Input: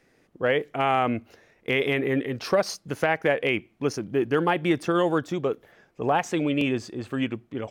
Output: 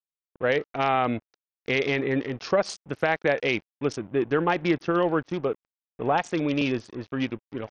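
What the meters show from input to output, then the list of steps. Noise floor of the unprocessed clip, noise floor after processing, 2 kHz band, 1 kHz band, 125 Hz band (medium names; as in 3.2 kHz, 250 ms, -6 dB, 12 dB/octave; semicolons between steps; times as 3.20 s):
-64 dBFS, under -85 dBFS, -0.5 dB, -0.5 dB, -1.0 dB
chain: crossover distortion -43 dBFS; SBC 64 kbps 48 kHz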